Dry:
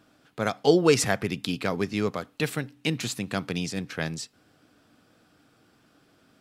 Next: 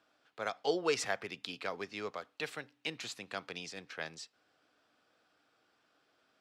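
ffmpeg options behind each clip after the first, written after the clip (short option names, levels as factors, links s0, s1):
-filter_complex "[0:a]acrossover=split=420 6800:gain=0.158 1 0.224[s0][s1][s2];[s0][s1][s2]amix=inputs=3:normalize=0,volume=0.398"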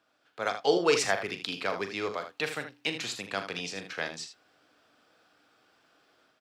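-af "dynaudnorm=f=240:g=3:m=2.24,aecho=1:1:40.82|78.72:0.316|0.316"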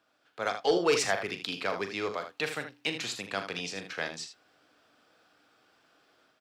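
-af "asoftclip=type=tanh:threshold=0.2"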